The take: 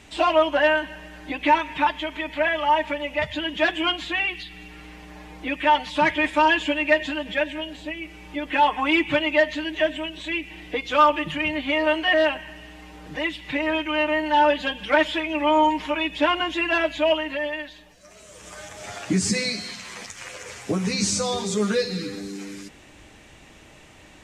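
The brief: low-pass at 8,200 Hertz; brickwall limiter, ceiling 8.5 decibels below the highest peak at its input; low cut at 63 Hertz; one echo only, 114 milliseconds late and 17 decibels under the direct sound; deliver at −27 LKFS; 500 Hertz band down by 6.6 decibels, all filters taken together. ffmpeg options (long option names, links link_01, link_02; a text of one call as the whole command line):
ffmpeg -i in.wav -af "highpass=63,lowpass=8200,equalizer=frequency=500:width_type=o:gain=-9,alimiter=limit=-17dB:level=0:latency=1,aecho=1:1:114:0.141,volume=0.5dB" out.wav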